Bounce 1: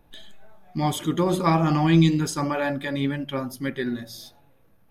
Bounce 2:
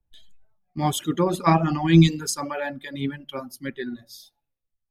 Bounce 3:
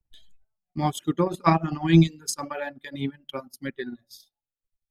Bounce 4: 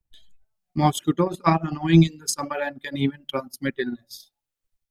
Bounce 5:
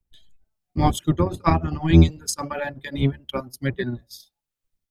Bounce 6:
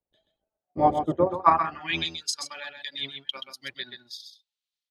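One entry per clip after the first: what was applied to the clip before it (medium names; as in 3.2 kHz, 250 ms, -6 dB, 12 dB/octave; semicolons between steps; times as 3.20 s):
reverb removal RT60 1.9 s; three bands expanded up and down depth 70%
transient shaper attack +4 dB, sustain -12 dB; trim -3.5 dB
level rider gain up to 6.5 dB
octave divider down 1 oct, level +1 dB; trim -1 dB
delay 129 ms -7.5 dB; band-pass sweep 600 Hz -> 3.8 kHz, 1.23–2.11 s; trim +6.5 dB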